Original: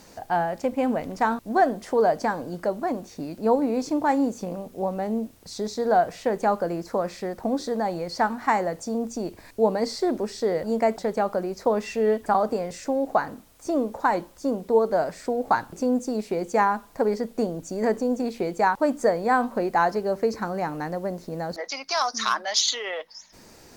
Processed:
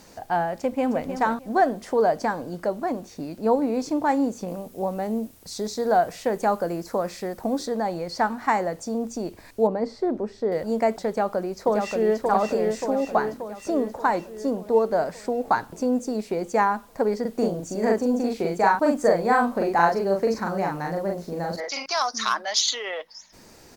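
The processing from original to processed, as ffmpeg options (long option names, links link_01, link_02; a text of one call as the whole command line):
ffmpeg -i in.wav -filter_complex "[0:a]asplit=2[link_01][link_02];[link_02]afade=type=in:start_time=0.59:duration=0.01,afade=type=out:start_time=1.03:duration=0.01,aecho=0:1:310|620|930:0.334965|0.0669931|0.0133986[link_03];[link_01][link_03]amix=inputs=2:normalize=0,asettb=1/sr,asplit=3[link_04][link_05][link_06];[link_04]atrim=end=4.484[link_07];[link_05]atrim=start=4.48:end=7.66,asetpts=PTS-STARTPTS,afade=type=in:duration=0.004:curve=qsin,afade=type=out:start_time=3.176:duration=0.004:curve=qsin,equalizer=frequency=14000:width=0.39:gain=7[link_08];[link_06]atrim=start=7.656[link_09];[link_07][link_08]acrossfade=duration=0.004:curve1=hsin:curve2=qsin[link_10];[link_10][link_09]acrossfade=duration=0.004:curve1=qsin:curve2=hsin,asettb=1/sr,asplit=3[link_11][link_12][link_13];[link_11]atrim=end=9.674[link_14];[link_12]atrim=start=9.67:end=10.52,asetpts=PTS-STARTPTS,afade=type=in:duration=0.004:curve=qsin,afade=type=out:start_time=0.846:duration=0.004:curve=qsin,lowpass=frequency=1000:poles=1[link_15];[link_13]atrim=start=10.516[link_16];[link_14][link_15]acrossfade=duration=0.004:curve1=hsin:curve2=qsin[link_17];[link_17][link_16]acrossfade=duration=0.004:curve1=qsin:curve2=hsin,asplit=2[link_18][link_19];[link_19]afade=type=in:start_time=11.09:duration=0.01,afade=type=out:start_time=12.25:duration=0.01,aecho=0:1:580|1160|1740|2320|2900|3480|4060|4640|5220:0.668344|0.401006|0.240604|0.144362|0.0866174|0.0519704|0.0311823|0.0187094|0.0112256[link_20];[link_18][link_20]amix=inputs=2:normalize=0,asettb=1/sr,asplit=3[link_21][link_22][link_23];[link_21]atrim=end=17.214[link_24];[link_22]atrim=start=17.21:end=21.86,asetpts=PTS-STARTPTS,afade=type=in:duration=0.004:curve=qsin,afade=type=out:start_time=4.646:duration=0.004:curve=qsin,asplit=2[link_25][link_26];[link_26]adelay=41,volume=-2dB[link_27];[link_25][link_27]amix=inputs=2:normalize=0,atrim=end_sample=205065[link_28];[link_23]atrim=start=21.856[link_29];[link_24][link_28]acrossfade=duration=0.004:curve1=hsin:curve2=qsin[link_30];[link_30][link_29]acrossfade=duration=0.004:curve1=qsin:curve2=hsin" out.wav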